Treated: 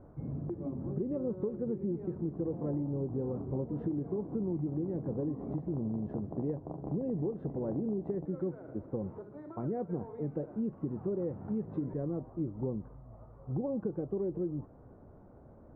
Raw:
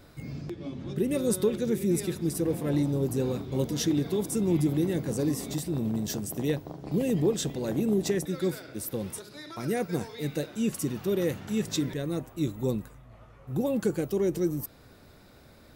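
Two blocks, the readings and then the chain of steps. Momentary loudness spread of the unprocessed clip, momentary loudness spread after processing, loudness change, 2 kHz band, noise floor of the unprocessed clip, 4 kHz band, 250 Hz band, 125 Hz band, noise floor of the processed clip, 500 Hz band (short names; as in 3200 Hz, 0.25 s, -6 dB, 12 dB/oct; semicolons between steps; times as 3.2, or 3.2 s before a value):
9 LU, 5 LU, -7.0 dB, under -20 dB, -54 dBFS, under -40 dB, -6.5 dB, -5.5 dB, -55 dBFS, -7.0 dB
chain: LPF 1000 Hz 24 dB/oct; compressor, threshold -31 dBFS, peak gain reduction 11 dB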